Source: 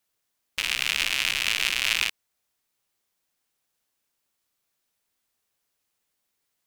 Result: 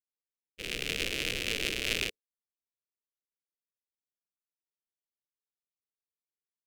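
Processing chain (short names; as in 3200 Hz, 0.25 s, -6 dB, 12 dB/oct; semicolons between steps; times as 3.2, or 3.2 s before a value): expander -22 dBFS; resonant low shelf 650 Hz +12.5 dB, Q 3; gain -5.5 dB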